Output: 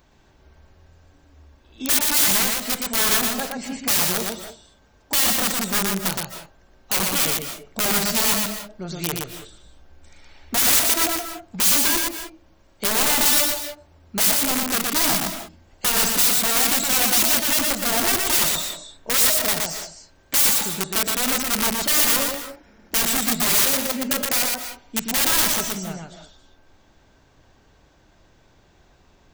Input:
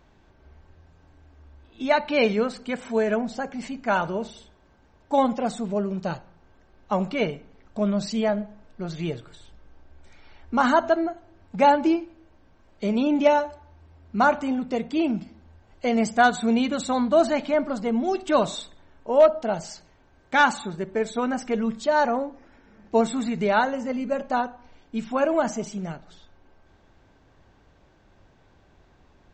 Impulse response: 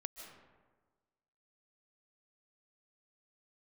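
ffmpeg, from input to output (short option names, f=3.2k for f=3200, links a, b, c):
-filter_complex "[0:a]aeval=exprs='(mod(10.6*val(0)+1,2)-1)/10.6':c=same,asplit=2[a][b];[1:a]atrim=start_sample=2205,afade=t=out:st=0.26:d=0.01,atrim=end_sample=11907,adelay=119[c];[b][c]afir=irnorm=-1:irlink=0,volume=1dB[d];[a][d]amix=inputs=2:normalize=0,crystalizer=i=2.5:c=0,volume=-1dB"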